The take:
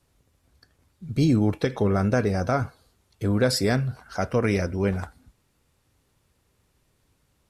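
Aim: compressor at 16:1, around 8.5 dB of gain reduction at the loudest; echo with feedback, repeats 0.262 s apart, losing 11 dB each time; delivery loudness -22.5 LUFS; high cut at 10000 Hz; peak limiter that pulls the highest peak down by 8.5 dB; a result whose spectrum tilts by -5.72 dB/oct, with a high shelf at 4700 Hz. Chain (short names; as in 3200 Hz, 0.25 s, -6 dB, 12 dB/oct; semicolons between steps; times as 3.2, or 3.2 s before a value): LPF 10000 Hz; high shelf 4700 Hz +7.5 dB; compressor 16:1, threshold -24 dBFS; limiter -22 dBFS; feedback echo 0.262 s, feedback 28%, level -11 dB; gain +10.5 dB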